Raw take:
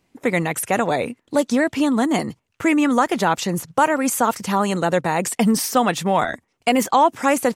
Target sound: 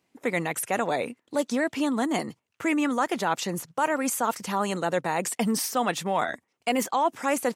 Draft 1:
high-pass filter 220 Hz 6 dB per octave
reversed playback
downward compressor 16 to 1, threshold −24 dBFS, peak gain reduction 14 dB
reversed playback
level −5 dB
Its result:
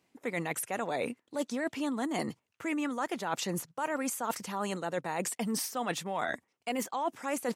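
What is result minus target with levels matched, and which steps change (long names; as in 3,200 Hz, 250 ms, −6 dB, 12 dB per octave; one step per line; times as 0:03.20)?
downward compressor: peak gain reduction +9.5 dB
change: downward compressor 16 to 1, threshold −14 dBFS, peak gain reduction 4.5 dB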